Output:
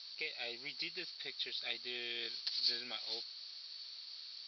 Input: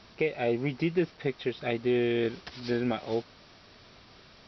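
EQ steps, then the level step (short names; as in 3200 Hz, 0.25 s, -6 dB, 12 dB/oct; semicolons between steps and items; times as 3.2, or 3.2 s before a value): band-pass 4400 Hz, Q 9.2; +16.0 dB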